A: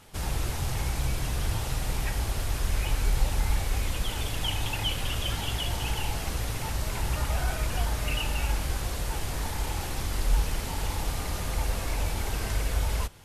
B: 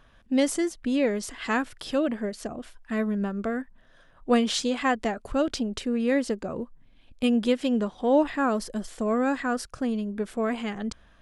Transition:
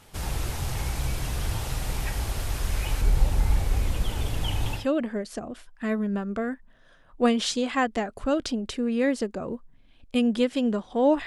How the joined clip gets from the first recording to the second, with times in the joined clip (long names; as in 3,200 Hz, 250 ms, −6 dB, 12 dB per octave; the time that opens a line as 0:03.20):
A
0:03.01–0:04.86: tilt shelving filter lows +4 dB, about 780 Hz
0:04.79: continue with B from 0:01.87, crossfade 0.14 s